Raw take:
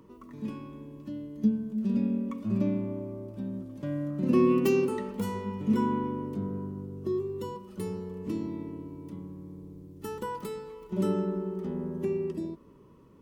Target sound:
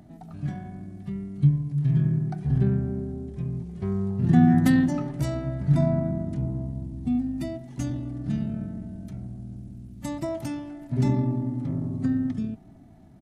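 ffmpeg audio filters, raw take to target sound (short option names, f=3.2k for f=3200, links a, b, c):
-af "asetrate=29433,aresample=44100,atempo=1.49831,volume=5.5dB"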